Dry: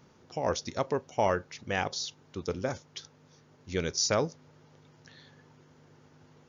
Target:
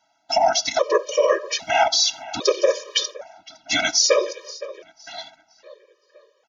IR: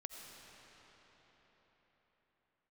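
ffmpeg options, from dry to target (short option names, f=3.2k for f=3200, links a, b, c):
-filter_complex "[0:a]highpass=f=610:t=q:w=4.9,agate=range=-26dB:threshold=-52dB:ratio=16:detection=peak,acompressor=threshold=-36dB:ratio=2,equalizer=f=4k:w=0.41:g=11,asplit=2[a][b];[b]adelay=511,lowpass=f=3.3k:p=1,volume=-21dB,asplit=2[c][d];[d]adelay=511,lowpass=f=3.3k:p=1,volume=0.5,asplit=2[e][f];[f]adelay=511,lowpass=f=3.3k:p=1,volume=0.5,asplit=2[g][h];[h]adelay=511,lowpass=f=3.3k:p=1,volume=0.5[i];[a][c][e][g][i]amix=inputs=5:normalize=0,asplit=2[j][k];[1:a]atrim=start_sample=2205,atrim=end_sample=4410[l];[k][l]afir=irnorm=-1:irlink=0,volume=-7dB[m];[j][m]amix=inputs=2:normalize=0,afftfilt=real='hypot(re,im)*cos(2*PI*random(0))':imag='hypot(re,im)*sin(2*PI*random(1))':win_size=512:overlap=0.75,alimiter=level_in=26.5dB:limit=-1dB:release=50:level=0:latency=1,afftfilt=real='re*gt(sin(2*PI*0.62*pts/sr)*(1-2*mod(floor(b*sr/1024/320),2)),0)':imag='im*gt(sin(2*PI*0.62*pts/sr)*(1-2*mod(floor(b*sr/1024/320),2)),0)':win_size=1024:overlap=0.75,volume=-4dB"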